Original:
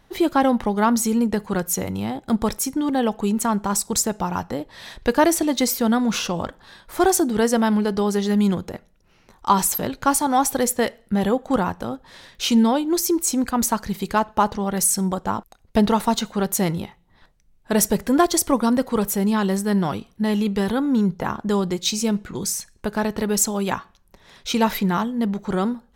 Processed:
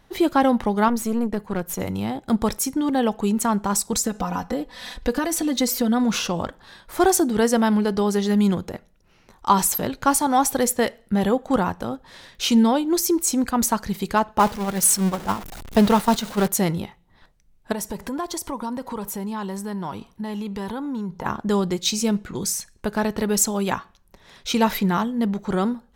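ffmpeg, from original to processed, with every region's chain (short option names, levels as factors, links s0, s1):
-filter_complex "[0:a]asettb=1/sr,asplit=3[s0][s1][s2];[s0]atrim=end=0.884[s3];[s1]atrim=start=0.88:end=1.8,asetpts=PTS-STARTPTS,afade=t=in:d=0.004:c=qsin,afade=t=out:st=0.916:d=0.004:c=qsin,equalizer=f=6000:w=0.49:g=-5.5,aeval=exprs='(tanh(7.08*val(0)+0.65)-tanh(0.65))/7.08':c=same[s4];[s2]atrim=start=1.796[s5];[s3][s4]acrossfade=d=0.004:c1=hsin:c2=qsin[s6];[s6][s5]acrossfade=d=0.004:c1=qsin:c2=hsin,asettb=1/sr,asplit=3[s7][s8][s9];[s7]atrim=end=3.924[s10];[s8]atrim=start=3.92:end=6.04,asetpts=PTS-STARTPTS,afade=t=in:d=0.004:c=qsin,afade=t=out:st=2.116:d=0.004:c=qsin,acompressor=threshold=0.0631:ratio=2.5:attack=3.2:release=140:knee=1:detection=peak,aecho=1:1:4:0.95,atrim=end_sample=93492[s11];[s9]atrim=start=6.036[s12];[s10][s11]acrossfade=d=0.004:c1=hsin:c2=qsin[s13];[s13][s12]acrossfade=d=0.004:c1=qsin:c2=hsin,asettb=1/sr,asplit=3[s14][s15][s16];[s14]atrim=end=14.394[s17];[s15]atrim=start=14.39:end=16.48,asetpts=PTS-STARTPTS,afade=t=in:d=0.004:c=qsin,afade=t=out:st=2.086:d=0.004:c=qsin,aeval=exprs='val(0)+0.5*0.0794*sgn(val(0))':c=same,agate=range=0.355:threshold=0.1:ratio=16:release=100:detection=peak[s18];[s16]atrim=start=16.476[s19];[s17][s18]acrossfade=d=0.004:c1=hsin:c2=qsin[s20];[s20][s19]acrossfade=d=0.004:c1=qsin:c2=hsin,asettb=1/sr,asplit=3[s21][s22][s23];[s21]atrim=end=17.724[s24];[s22]atrim=start=17.72:end=21.26,asetpts=PTS-STARTPTS,afade=t=in:d=0.004:c=qsin,afade=t=out:st=3.536:d=0.004:c=qsin,equalizer=f=950:w=4.6:g=10.5,acompressor=threshold=0.0355:ratio=3:attack=3.2:release=140:knee=1:detection=peak[s25];[s23]atrim=start=21.256[s26];[s24][s25]acrossfade=d=0.004:c1=hsin:c2=qsin[s27];[s27][s26]acrossfade=d=0.004:c1=qsin:c2=hsin"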